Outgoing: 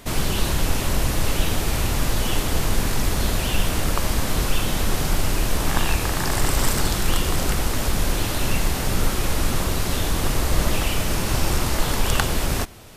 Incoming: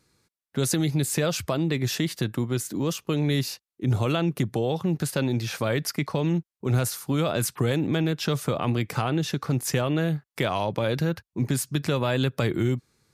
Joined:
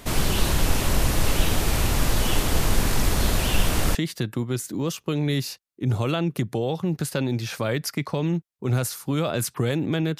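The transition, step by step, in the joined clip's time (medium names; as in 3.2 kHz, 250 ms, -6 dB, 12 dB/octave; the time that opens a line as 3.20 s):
outgoing
3.95 s: go over to incoming from 1.96 s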